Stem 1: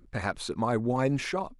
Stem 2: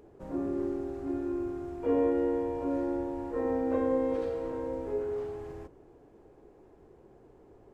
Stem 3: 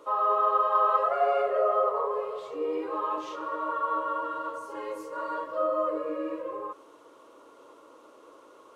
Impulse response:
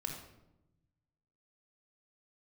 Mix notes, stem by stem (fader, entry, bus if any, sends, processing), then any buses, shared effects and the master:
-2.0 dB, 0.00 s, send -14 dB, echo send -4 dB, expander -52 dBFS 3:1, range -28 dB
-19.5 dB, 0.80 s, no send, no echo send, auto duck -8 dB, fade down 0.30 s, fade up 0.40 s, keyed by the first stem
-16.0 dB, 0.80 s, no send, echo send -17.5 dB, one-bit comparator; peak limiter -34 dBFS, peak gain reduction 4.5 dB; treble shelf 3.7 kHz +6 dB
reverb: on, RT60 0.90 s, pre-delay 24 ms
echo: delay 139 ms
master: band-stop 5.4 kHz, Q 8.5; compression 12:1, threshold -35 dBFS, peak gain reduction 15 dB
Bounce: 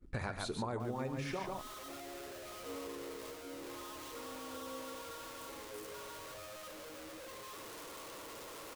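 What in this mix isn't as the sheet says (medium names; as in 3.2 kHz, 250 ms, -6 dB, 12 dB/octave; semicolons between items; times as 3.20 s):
stem 1: send -14 dB -> -7 dB; master: missing band-stop 5.4 kHz, Q 8.5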